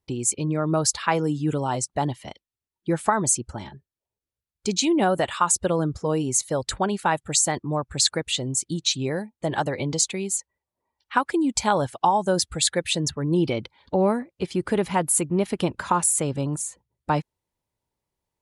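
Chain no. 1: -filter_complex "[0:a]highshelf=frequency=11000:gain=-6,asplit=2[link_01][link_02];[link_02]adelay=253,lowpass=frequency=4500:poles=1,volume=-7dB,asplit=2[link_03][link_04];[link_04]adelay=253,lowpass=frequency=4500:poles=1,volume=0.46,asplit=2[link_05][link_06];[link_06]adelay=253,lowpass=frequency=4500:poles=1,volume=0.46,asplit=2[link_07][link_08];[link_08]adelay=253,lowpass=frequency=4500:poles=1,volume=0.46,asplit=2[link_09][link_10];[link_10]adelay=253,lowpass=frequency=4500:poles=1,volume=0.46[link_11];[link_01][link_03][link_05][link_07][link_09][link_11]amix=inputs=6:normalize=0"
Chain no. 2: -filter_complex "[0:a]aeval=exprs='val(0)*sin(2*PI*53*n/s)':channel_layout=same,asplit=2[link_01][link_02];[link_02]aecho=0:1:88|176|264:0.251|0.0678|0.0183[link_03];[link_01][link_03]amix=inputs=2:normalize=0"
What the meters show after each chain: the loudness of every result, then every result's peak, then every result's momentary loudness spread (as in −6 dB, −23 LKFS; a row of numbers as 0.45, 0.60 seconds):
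−24.0, −26.5 LKFS; −6.0, −6.0 dBFS; 11, 8 LU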